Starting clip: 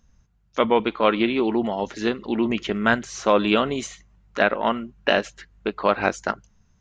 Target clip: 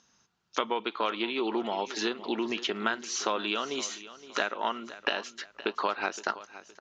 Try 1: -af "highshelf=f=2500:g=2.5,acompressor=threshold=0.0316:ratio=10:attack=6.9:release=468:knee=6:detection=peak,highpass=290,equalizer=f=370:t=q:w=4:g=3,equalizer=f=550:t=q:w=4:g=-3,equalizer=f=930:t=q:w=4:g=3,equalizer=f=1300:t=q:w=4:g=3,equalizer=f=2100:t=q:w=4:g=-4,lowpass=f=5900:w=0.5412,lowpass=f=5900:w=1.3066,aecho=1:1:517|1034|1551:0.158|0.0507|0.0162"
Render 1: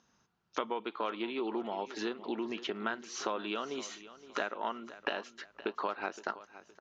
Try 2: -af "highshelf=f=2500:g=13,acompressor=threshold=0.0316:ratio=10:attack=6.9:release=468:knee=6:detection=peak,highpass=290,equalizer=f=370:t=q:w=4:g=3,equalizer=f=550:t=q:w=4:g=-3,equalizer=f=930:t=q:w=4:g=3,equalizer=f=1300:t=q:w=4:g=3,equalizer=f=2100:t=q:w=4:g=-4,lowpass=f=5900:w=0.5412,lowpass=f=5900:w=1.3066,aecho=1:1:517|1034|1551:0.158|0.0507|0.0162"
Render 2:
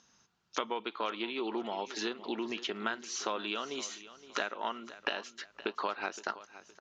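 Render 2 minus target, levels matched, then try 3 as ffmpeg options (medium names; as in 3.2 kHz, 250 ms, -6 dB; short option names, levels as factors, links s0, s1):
compression: peak gain reduction +5.5 dB
-af "highshelf=f=2500:g=13,acompressor=threshold=0.0631:ratio=10:attack=6.9:release=468:knee=6:detection=peak,highpass=290,equalizer=f=370:t=q:w=4:g=3,equalizer=f=550:t=q:w=4:g=-3,equalizer=f=930:t=q:w=4:g=3,equalizer=f=1300:t=q:w=4:g=3,equalizer=f=2100:t=q:w=4:g=-4,lowpass=f=5900:w=0.5412,lowpass=f=5900:w=1.3066,aecho=1:1:517|1034|1551:0.158|0.0507|0.0162"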